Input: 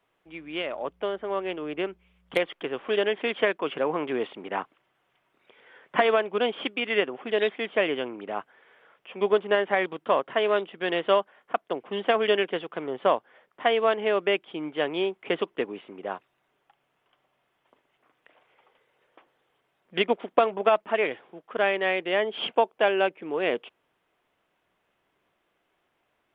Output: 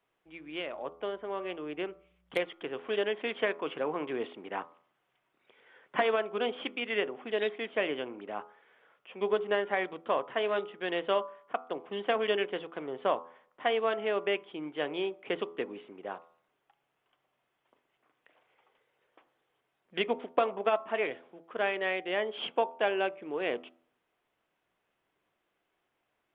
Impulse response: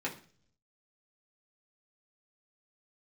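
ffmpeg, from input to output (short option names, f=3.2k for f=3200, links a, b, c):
-filter_complex "[0:a]bandreject=f=83.31:t=h:w=4,bandreject=f=166.62:t=h:w=4,bandreject=f=249.93:t=h:w=4,bandreject=f=333.24:t=h:w=4,bandreject=f=416.55:t=h:w=4,bandreject=f=499.86:t=h:w=4,bandreject=f=583.17:t=h:w=4,bandreject=f=666.48:t=h:w=4,bandreject=f=749.79:t=h:w=4,bandreject=f=833.1:t=h:w=4,bandreject=f=916.41:t=h:w=4,bandreject=f=999.72:t=h:w=4,bandreject=f=1.08303k:t=h:w=4,bandreject=f=1.16634k:t=h:w=4,bandreject=f=1.24965k:t=h:w=4,bandreject=f=1.33296k:t=h:w=4,bandreject=f=1.41627k:t=h:w=4,asplit=2[a][b];[1:a]atrim=start_sample=2205[c];[b][c]afir=irnorm=-1:irlink=0,volume=-21dB[d];[a][d]amix=inputs=2:normalize=0,volume=-6.5dB"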